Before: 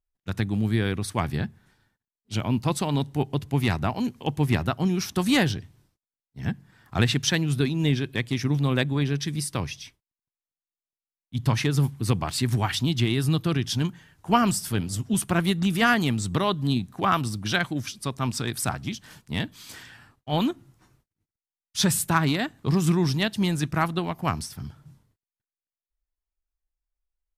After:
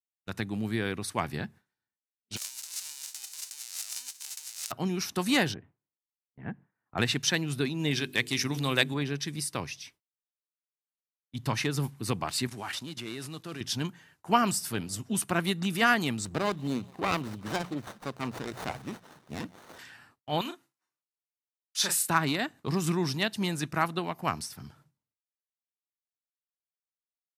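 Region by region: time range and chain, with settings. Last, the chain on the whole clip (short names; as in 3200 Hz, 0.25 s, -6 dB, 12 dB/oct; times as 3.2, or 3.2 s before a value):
2.36–4.7 spectral whitening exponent 0.1 + negative-ratio compressor -33 dBFS + band-pass 6600 Hz, Q 1.2
5.54–6.98 Gaussian blur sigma 4.2 samples + low shelf 130 Hz -5.5 dB
7.91–8.94 high shelf 2200 Hz +10.5 dB + de-hum 50.12 Hz, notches 9
12.47–13.61 CVSD 64 kbps + HPF 180 Hz 6 dB/oct + level quantiser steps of 11 dB
16.25–19.79 notches 60/120/180 Hz + thin delay 0.176 s, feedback 53%, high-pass 3300 Hz, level -14.5 dB + running maximum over 17 samples
20.41–22.09 HPF 910 Hz 6 dB/oct + doubler 36 ms -6 dB
whole clip: HPF 290 Hz 6 dB/oct; gate with hold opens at -45 dBFS; notch 3300 Hz, Q 16; gain -2 dB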